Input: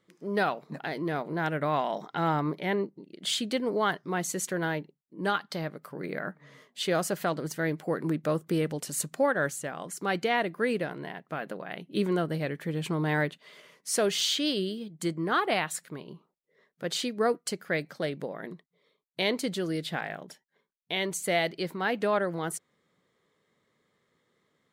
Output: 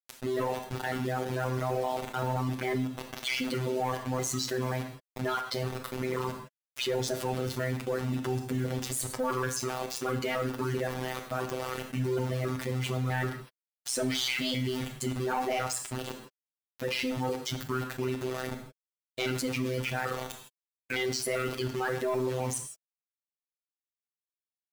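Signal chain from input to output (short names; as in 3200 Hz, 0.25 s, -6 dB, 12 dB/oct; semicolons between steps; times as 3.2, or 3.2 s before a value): trilling pitch shifter -6.5 st, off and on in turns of 0.131 s; vibrato 2.7 Hz 52 cents; in parallel at -1 dB: level quantiser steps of 19 dB; on the sum: bit-crush 6-bit; robotiser 128 Hz; soft clip -20 dBFS, distortion -11 dB; on a send at -7.5 dB: reverb, pre-delay 3 ms; on the sum: fast leveller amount 50%; gain -2.5 dB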